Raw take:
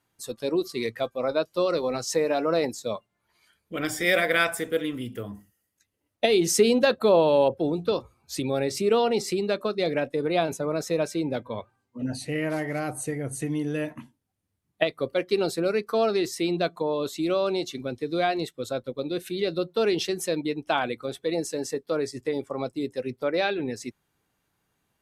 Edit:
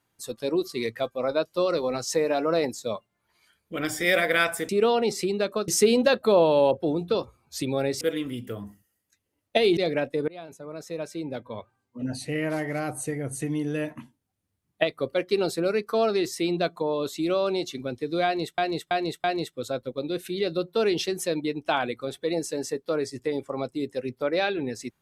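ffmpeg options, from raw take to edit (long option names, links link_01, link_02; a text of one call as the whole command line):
ffmpeg -i in.wav -filter_complex "[0:a]asplit=9[link_01][link_02][link_03][link_04][link_05][link_06][link_07][link_08][link_09];[link_01]atrim=end=4.692[link_10];[link_02]atrim=start=8.778:end=9.772[link_11];[link_03]atrim=start=6.448:end=8.782[link_12];[link_04]atrim=start=4.688:end=6.452[link_13];[link_05]atrim=start=9.768:end=10.28,asetpts=PTS-STARTPTS,afade=type=out:start_time=0.508:duration=0.004:curve=hsin:silence=0.0841395[link_14];[link_06]atrim=start=10.28:end=18.582,asetpts=PTS-STARTPTS,afade=type=in:duration=1.94:silence=0.0841395[link_15];[link_07]atrim=start=18.248:end=18.582[link_16];[link_08]atrim=start=18.248:end=18.582[link_17];[link_09]atrim=start=18.248[link_18];[link_10][link_11]acrossfade=duration=0.004:curve1=hsin:curve2=hsin[link_19];[link_19][link_12]acrossfade=duration=0.004:curve1=hsin:curve2=hsin[link_20];[link_20][link_13]acrossfade=duration=0.004:curve1=hsin:curve2=hsin[link_21];[link_14][link_15]concat=n=2:v=0:a=1[link_22];[link_21][link_22]acrossfade=duration=0.004:curve1=hsin:curve2=hsin[link_23];[link_23][link_16]acrossfade=duration=0.004:curve1=hsin:curve2=hsin[link_24];[link_24][link_17]acrossfade=duration=0.004:curve1=hsin:curve2=hsin[link_25];[link_25][link_18]acrossfade=duration=0.004:curve1=hsin:curve2=hsin" out.wav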